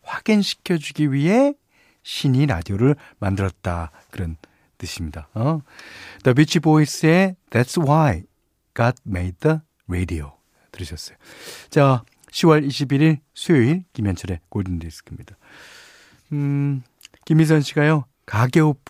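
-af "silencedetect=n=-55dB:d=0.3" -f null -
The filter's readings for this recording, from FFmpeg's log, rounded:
silence_start: 8.28
silence_end: 8.76 | silence_duration: 0.48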